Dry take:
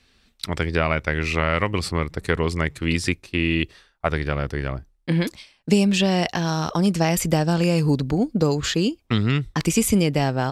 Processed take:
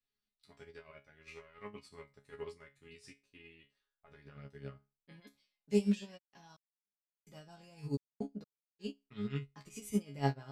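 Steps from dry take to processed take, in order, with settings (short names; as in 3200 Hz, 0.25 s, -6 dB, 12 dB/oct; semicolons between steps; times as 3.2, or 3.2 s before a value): limiter -14.5 dBFS, peak gain reduction 10 dB; resonator bank C#3 fifth, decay 0.27 s; 6.17–8.79 step gate "xx.x...x" 64 bpm -60 dB; upward expander 2.5:1, over -44 dBFS; gain +4 dB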